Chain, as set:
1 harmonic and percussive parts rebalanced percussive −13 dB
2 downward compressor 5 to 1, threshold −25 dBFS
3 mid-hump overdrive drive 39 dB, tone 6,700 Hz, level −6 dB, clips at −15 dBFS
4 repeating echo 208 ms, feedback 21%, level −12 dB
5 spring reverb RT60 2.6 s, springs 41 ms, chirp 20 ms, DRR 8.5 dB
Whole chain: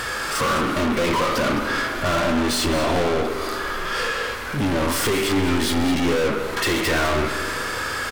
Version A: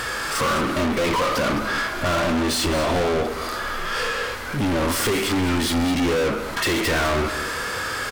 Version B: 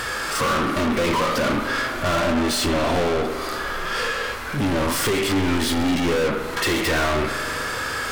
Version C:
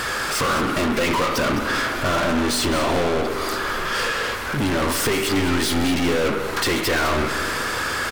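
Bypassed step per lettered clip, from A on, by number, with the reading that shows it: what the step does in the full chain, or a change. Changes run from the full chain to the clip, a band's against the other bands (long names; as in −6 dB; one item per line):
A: 5, echo-to-direct ratio −6.5 dB to −12.0 dB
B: 4, echo-to-direct ratio −6.5 dB to −8.5 dB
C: 1, change in momentary loudness spread −2 LU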